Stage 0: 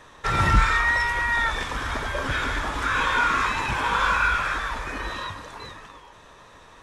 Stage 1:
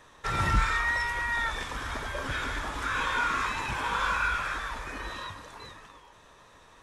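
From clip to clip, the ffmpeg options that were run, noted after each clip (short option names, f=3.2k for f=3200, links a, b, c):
-af "highshelf=f=7.1k:g=5,volume=-6.5dB"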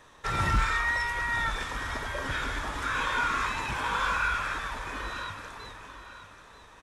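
-af "asoftclip=type=hard:threshold=-17.5dB,aecho=1:1:937|1874|2811:0.224|0.0739|0.0244"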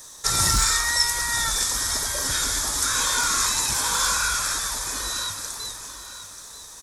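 -af "aexciter=amount=11.2:drive=7.2:freq=4.2k,volume=1dB"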